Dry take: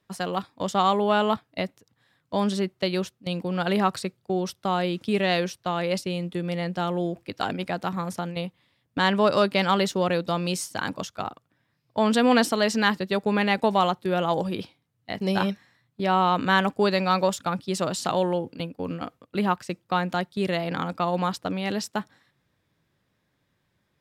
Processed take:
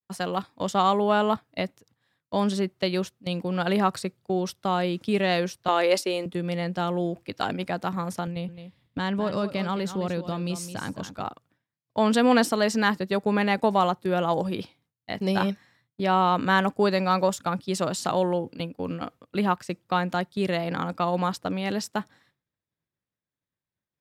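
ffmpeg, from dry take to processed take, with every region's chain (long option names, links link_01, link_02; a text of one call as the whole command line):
ffmpeg -i in.wav -filter_complex "[0:a]asettb=1/sr,asplit=3[link_01][link_02][link_03];[link_01]atrim=end=5.684[link_04];[link_02]atrim=start=5.68:end=6.26,asetpts=PTS-STARTPTS,afade=type=in:duration=0.004:curve=qsin,afade=type=out:start_time=0.576:duration=0.004:curve=qsin,highpass=frequency=300:width=0.5412,highpass=frequency=300:width=1.3066,acontrast=46[link_05];[link_03]atrim=start=6.256[link_06];[link_04][link_05]acrossfade=duration=0.004:curve1=hsin:curve2=qsin[link_07];[link_07][link_06]acrossfade=duration=0.004:curve1=qsin:curve2=hsin,asettb=1/sr,asplit=3[link_08][link_09][link_10];[link_08]atrim=end=8.274[link_11];[link_09]atrim=start=8.27:end=11.21,asetpts=PTS-STARTPTS,afade=type=in:duration=0.004:curve=qsin,afade=type=out:start_time=2.936:duration=0.004:curve=qsin,lowshelf=frequency=240:gain=11,acompressor=threshold=-39dB:ratio=1.5:attack=3.2:release=140:knee=1:detection=peak,aecho=1:1:214:0.282,atrim=end_sample=129654[link_12];[link_10]atrim=start=11.206[link_13];[link_11][link_12]acrossfade=duration=0.004:curve1=hsin:curve2=qsin[link_14];[link_14][link_13]acrossfade=duration=0.004:curve1=qsin:curve2=hsin,agate=range=-33dB:threshold=-59dB:ratio=3:detection=peak,adynamicequalizer=threshold=0.00891:dfrequency=3200:dqfactor=1.1:tfrequency=3200:tqfactor=1.1:attack=5:release=100:ratio=0.375:range=2.5:mode=cutabove:tftype=bell" out.wav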